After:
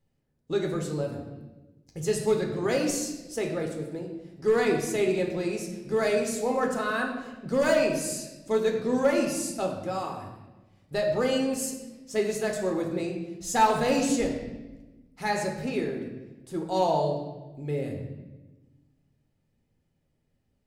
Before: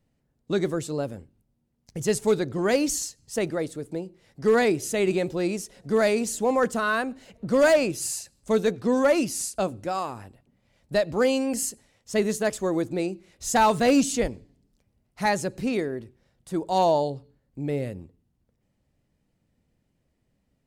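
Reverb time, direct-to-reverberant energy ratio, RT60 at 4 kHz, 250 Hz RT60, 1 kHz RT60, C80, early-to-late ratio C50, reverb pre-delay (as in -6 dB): 1.1 s, 1.0 dB, 0.95 s, 1.7 s, 0.95 s, 7.0 dB, 5.0 dB, 7 ms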